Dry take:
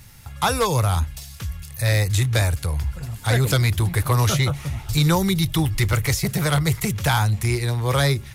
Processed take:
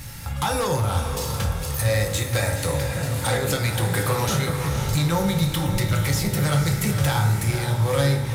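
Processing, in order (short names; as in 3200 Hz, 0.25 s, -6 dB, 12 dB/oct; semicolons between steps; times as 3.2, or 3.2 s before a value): 1.88–4.29 HPF 160 Hz 12 dB/oct; compressor 4:1, threshold -30 dBFS, peak gain reduction 13 dB; soft clip -27 dBFS, distortion -16 dB; diffused feedback echo 0.514 s, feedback 49%, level -7 dB; reverb, pre-delay 3 ms, DRR 1 dB; gain +8 dB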